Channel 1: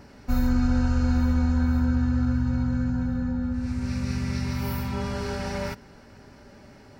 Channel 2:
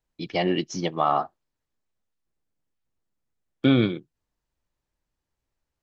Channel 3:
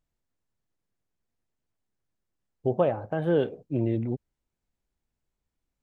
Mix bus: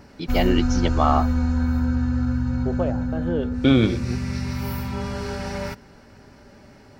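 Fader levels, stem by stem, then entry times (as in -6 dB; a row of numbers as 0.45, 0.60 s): +1.0, +2.0, -3.0 dB; 0.00, 0.00, 0.00 s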